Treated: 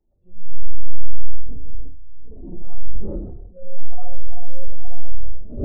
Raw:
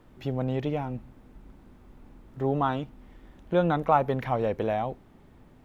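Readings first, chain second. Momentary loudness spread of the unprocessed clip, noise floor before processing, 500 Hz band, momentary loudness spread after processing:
12 LU, -55 dBFS, -12.5 dB, 13 LU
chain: wind noise 380 Hz -32 dBFS; in parallel at -0.5 dB: limiter -18 dBFS, peak gain reduction 9.5 dB; on the sum: monotone LPC vocoder at 8 kHz 180 Hz; Schroeder reverb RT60 1.4 s, combs from 26 ms, DRR -7 dB; transient shaper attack -9 dB, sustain +9 dB; reverse; compressor 12:1, threshold -16 dBFS, peak gain reduction 15.5 dB; reverse; spectral expander 2.5:1; gain +4.5 dB

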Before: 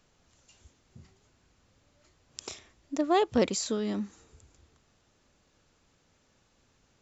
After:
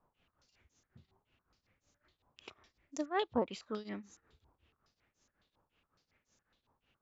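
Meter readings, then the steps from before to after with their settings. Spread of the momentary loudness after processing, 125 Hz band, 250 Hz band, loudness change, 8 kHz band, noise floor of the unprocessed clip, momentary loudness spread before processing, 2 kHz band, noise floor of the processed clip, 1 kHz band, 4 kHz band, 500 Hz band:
22 LU, -12.0 dB, -10.5 dB, -8.5 dB, n/a, -69 dBFS, 19 LU, -5.5 dB, under -85 dBFS, -8.5 dB, -10.0 dB, -9.5 dB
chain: tremolo triangle 5.4 Hz, depth 90%; stepped low-pass 7.2 Hz 970–6400 Hz; gain -8 dB

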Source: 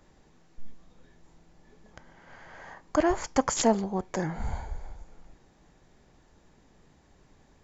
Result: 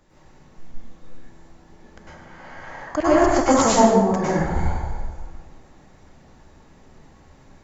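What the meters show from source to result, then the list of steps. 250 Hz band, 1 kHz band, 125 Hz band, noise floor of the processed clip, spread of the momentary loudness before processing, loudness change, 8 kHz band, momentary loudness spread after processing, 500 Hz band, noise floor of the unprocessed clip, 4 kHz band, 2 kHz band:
+9.5 dB, +11.5 dB, +10.5 dB, -51 dBFS, 21 LU, +9.5 dB, n/a, 21 LU, +10.5 dB, -62 dBFS, +7.5 dB, +9.5 dB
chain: plate-style reverb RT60 1.2 s, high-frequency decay 0.55×, pre-delay 90 ms, DRR -9.5 dB

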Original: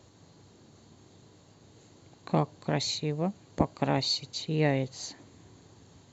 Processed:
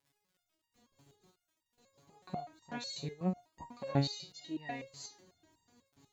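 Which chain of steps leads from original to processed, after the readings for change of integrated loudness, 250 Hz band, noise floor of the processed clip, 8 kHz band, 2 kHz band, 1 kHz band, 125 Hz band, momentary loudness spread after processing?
-9.5 dB, -8.0 dB, under -85 dBFS, n/a, -10.5 dB, -10.0 dB, -8.0 dB, 15 LU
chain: gate with hold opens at -45 dBFS; reverse echo 0.243 s -22.5 dB; crackle 110/s -50 dBFS; stepped resonator 8.1 Hz 140–940 Hz; gain +4 dB

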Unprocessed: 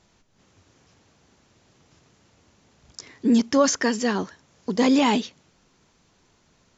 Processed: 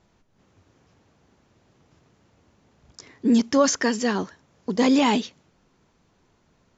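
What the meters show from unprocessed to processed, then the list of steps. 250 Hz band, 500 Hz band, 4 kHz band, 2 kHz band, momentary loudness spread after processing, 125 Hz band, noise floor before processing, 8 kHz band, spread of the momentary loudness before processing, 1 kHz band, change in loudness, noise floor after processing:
0.0 dB, 0.0 dB, 0.0 dB, 0.0 dB, 16 LU, 0.0 dB, -63 dBFS, n/a, 16 LU, 0.0 dB, 0.0 dB, -65 dBFS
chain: mismatched tape noise reduction decoder only

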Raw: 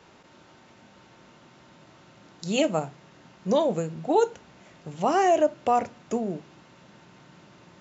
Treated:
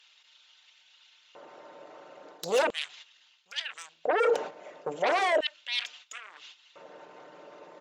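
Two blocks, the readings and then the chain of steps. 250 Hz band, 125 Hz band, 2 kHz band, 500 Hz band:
-16.0 dB, under -15 dB, +5.5 dB, -4.5 dB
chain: formant sharpening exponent 1.5; gate -47 dBFS, range -13 dB; comb 6.7 ms, depth 33%; reverse; compressor 6:1, threshold -33 dBFS, peak gain reduction 17.5 dB; reverse; sine folder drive 13 dB, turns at -23 dBFS; LFO high-pass square 0.37 Hz 510–3300 Hz; gain -1.5 dB

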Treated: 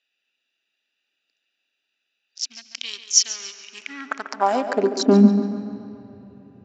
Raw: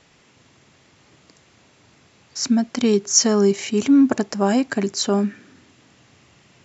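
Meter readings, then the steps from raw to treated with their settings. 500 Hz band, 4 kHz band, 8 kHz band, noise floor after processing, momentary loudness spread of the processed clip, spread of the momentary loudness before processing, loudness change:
-2.5 dB, 0.0 dB, n/a, -78 dBFS, 21 LU, 8 LU, -1.5 dB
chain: Wiener smoothing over 41 samples; LPF 6600 Hz 24 dB/oct; bell 240 Hz +6.5 dB 0.71 oct; digital reverb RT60 4.2 s, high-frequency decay 0.6×, pre-delay 0.11 s, DRR 17 dB; high-pass sweep 3000 Hz -> 95 Hz, 3.64–5.78; on a send: tape echo 0.14 s, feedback 62%, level -9.5 dB, low-pass 3500 Hz

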